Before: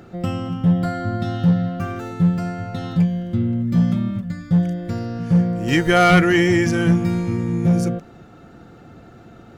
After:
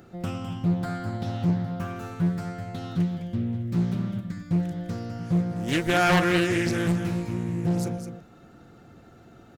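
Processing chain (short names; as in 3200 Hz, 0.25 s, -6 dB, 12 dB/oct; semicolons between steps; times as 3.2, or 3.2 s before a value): high shelf 7000 Hz +9 dB; echo 0.207 s -8.5 dB; Doppler distortion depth 0.46 ms; gain -7.5 dB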